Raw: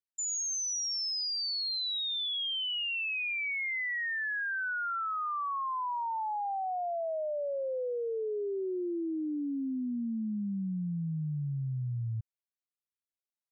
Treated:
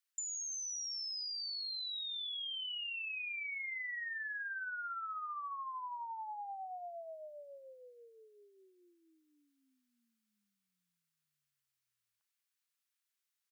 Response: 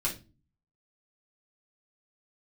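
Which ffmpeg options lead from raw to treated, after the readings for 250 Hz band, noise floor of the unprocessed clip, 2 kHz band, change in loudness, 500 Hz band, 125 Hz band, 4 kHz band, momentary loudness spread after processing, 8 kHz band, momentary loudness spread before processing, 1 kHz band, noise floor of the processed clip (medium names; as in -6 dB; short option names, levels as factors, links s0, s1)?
under -40 dB, under -85 dBFS, -8.0 dB, -7.0 dB, -18.5 dB, under -40 dB, -7.5 dB, 11 LU, no reading, 4 LU, -9.5 dB, under -85 dBFS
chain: -filter_complex "[0:a]highpass=f=1200:w=0.5412,highpass=f=1200:w=1.3066,asplit=2[s0][s1];[s1]adelay=34,volume=0.251[s2];[s0][s2]amix=inputs=2:normalize=0,acompressor=threshold=0.00355:ratio=6,volume=2.37"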